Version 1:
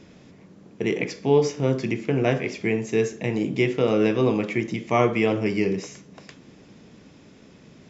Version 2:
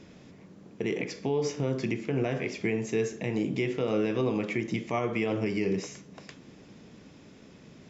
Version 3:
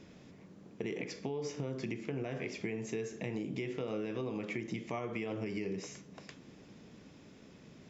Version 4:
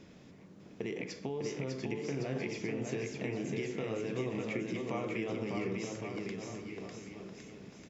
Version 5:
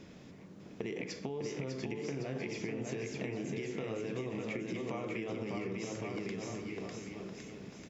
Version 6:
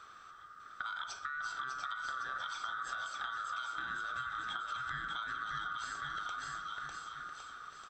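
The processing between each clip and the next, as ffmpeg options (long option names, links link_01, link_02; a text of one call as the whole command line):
ffmpeg -i in.wav -af "alimiter=limit=-16.5dB:level=0:latency=1:release=145,volume=-2dB" out.wav
ffmpeg -i in.wav -af "acompressor=threshold=-30dB:ratio=6,volume=-4dB" out.wav
ffmpeg -i in.wav -af "aecho=1:1:600|1110|1544|1912|2225:0.631|0.398|0.251|0.158|0.1" out.wav
ffmpeg -i in.wav -af "acompressor=threshold=-37dB:ratio=6,volume=2.5dB" out.wav
ffmpeg -i in.wav -af "afftfilt=real='real(if(lt(b,960),b+48*(1-2*mod(floor(b/48),2)),b),0)':imag='imag(if(lt(b,960),b+48*(1-2*mod(floor(b/48),2)),b),0)':win_size=2048:overlap=0.75,volume=-1.5dB" out.wav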